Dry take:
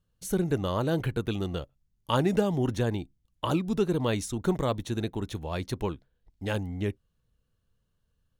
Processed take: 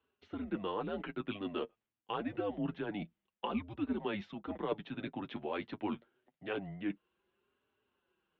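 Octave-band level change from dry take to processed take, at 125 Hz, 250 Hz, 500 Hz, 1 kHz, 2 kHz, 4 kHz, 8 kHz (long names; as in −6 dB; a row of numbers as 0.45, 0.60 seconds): −18.0 dB, −8.5 dB, −10.0 dB, −7.0 dB, −6.5 dB, −10.0 dB, below −35 dB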